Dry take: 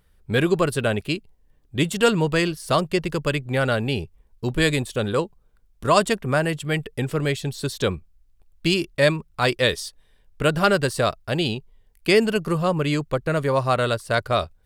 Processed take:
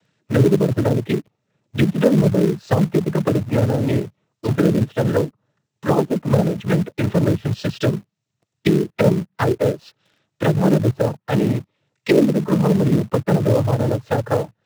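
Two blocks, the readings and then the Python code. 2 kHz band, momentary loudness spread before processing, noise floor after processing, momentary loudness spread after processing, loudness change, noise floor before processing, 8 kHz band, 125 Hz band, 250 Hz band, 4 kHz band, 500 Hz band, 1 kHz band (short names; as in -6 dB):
-6.0 dB, 9 LU, -78 dBFS, 8 LU, +3.5 dB, -60 dBFS, -5.0 dB, +7.0 dB, +7.0 dB, -8.0 dB, +2.5 dB, -2.5 dB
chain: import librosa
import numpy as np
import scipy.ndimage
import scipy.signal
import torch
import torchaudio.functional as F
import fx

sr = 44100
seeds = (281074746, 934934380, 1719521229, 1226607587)

p1 = fx.noise_vocoder(x, sr, seeds[0], bands=12)
p2 = fx.env_lowpass_down(p1, sr, base_hz=450.0, full_db=-18.0)
p3 = fx.hpss(p2, sr, part='harmonic', gain_db=4)
p4 = fx.quant_companded(p3, sr, bits=4)
p5 = p3 + (p4 * librosa.db_to_amplitude(-5.0))
y = p5 * librosa.db_to_amplitude(1.0)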